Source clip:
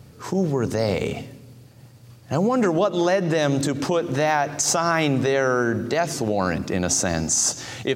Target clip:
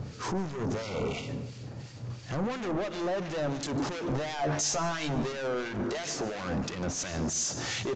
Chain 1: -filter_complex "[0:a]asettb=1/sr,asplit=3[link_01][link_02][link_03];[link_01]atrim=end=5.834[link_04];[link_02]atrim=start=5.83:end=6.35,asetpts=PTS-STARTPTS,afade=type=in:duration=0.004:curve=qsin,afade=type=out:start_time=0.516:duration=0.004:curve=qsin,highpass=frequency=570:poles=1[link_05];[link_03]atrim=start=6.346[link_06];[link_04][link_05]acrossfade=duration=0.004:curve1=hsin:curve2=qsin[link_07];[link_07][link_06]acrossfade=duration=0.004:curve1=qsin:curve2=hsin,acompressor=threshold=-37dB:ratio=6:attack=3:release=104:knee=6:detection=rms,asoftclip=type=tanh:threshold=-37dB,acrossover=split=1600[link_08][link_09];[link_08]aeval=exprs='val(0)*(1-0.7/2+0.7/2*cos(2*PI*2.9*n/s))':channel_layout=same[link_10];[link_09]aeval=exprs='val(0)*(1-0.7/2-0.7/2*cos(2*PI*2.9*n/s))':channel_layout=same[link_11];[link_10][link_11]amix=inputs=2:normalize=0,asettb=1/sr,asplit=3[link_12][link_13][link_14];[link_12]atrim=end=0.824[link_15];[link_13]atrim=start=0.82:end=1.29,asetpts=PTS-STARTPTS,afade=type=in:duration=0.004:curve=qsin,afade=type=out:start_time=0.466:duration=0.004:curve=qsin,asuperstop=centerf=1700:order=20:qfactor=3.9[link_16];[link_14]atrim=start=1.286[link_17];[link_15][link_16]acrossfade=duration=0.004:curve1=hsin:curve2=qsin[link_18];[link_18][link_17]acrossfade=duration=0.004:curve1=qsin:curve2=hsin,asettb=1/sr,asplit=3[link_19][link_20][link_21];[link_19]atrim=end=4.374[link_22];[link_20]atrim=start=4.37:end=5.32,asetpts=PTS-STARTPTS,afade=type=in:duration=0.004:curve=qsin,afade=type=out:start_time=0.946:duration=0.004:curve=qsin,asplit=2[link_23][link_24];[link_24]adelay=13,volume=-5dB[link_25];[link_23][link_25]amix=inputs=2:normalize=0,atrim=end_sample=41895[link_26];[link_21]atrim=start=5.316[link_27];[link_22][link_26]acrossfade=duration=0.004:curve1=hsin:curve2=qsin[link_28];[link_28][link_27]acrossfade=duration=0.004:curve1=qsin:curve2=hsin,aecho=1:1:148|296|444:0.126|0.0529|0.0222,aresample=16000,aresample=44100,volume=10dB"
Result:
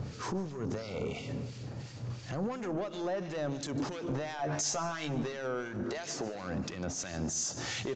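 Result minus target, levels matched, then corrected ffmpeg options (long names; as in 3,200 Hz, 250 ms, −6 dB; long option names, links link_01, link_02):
downward compressor: peak gain reduction +10 dB
-filter_complex "[0:a]asettb=1/sr,asplit=3[link_01][link_02][link_03];[link_01]atrim=end=5.834[link_04];[link_02]atrim=start=5.83:end=6.35,asetpts=PTS-STARTPTS,afade=type=in:duration=0.004:curve=qsin,afade=type=out:start_time=0.516:duration=0.004:curve=qsin,highpass=frequency=570:poles=1[link_05];[link_03]atrim=start=6.346[link_06];[link_04][link_05]acrossfade=duration=0.004:curve1=hsin:curve2=qsin[link_07];[link_07][link_06]acrossfade=duration=0.004:curve1=qsin:curve2=hsin,acompressor=threshold=-25dB:ratio=6:attack=3:release=104:knee=6:detection=rms,asoftclip=type=tanh:threshold=-37dB,acrossover=split=1600[link_08][link_09];[link_08]aeval=exprs='val(0)*(1-0.7/2+0.7/2*cos(2*PI*2.9*n/s))':channel_layout=same[link_10];[link_09]aeval=exprs='val(0)*(1-0.7/2-0.7/2*cos(2*PI*2.9*n/s))':channel_layout=same[link_11];[link_10][link_11]amix=inputs=2:normalize=0,asettb=1/sr,asplit=3[link_12][link_13][link_14];[link_12]atrim=end=0.824[link_15];[link_13]atrim=start=0.82:end=1.29,asetpts=PTS-STARTPTS,afade=type=in:duration=0.004:curve=qsin,afade=type=out:start_time=0.466:duration=0.004:curve=qsin,asuperstop=centerf=1700:order=20:qfactor=3.9[link_16];[link_14]atrim=start=1.286[link_17];[link_15][link_16]acrossfade=duration=0.004:curve1=hsin:curve2=qsin[link_18];[link_18][link_17]acrossfade=duration=0.004:curve1=qsin:curve2=hsin,asettb=1/sr,asplit=3[link_19][link_20][link_21];[link_19]atrim=end=4.374[link_22];[link_20]atrim=start=4.37:end=5.32,asetpts=PTS-STARTPTS,afade=type=in:duration=0.004:curve=qsin,afade=type=out:start_time=0.946:duration=0.004:curve=qsin,asplit=2[link_23][link_24];[link_24]adelay=13,volume=-5dB[link_25];[link_23][link_25]amix=inputs=2:normalize=0,atrim=end_sample=41895[link_26];[link_21]atrim=start=5.316[link_27];[link_22][link_26]acrossfade=duration=0.004:curve1=hsin:curve2=qsin[link_28];[link_28][link_27]acrossfade=duration=0.004:curve1=qsin:curve2=hsin,aecho=1:1:148|296|444:0.126|0.0529|0.0222,aresample=16000,aresample=44100,volume=10dB"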